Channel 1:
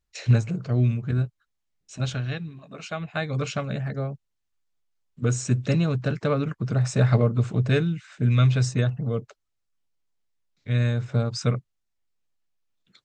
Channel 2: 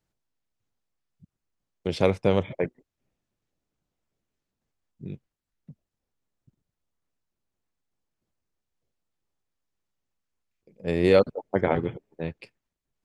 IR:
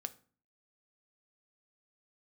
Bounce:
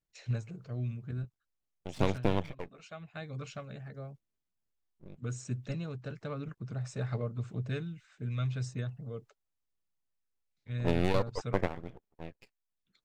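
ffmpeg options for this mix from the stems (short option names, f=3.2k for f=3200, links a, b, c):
-filter_complex "[0:a]volume=-15dB,asplit=2[a][b];[1:a]acompressor=threshold=-24dB:ratio=4,aeval=exprs='max(val(0),0)':c=same,volume=1dB[c];[b]apad=whole_len=575403[d];[c][d]sidechaingate=range=-11dB:threshold=-52dB:ratio=16:detection=peak[e];[a][e]amix=inputs=2:normalize=0,aphaser=in_gain=1:out_gain=1:delay=2.7:decay=0.21:speed=0.92:type=triangular"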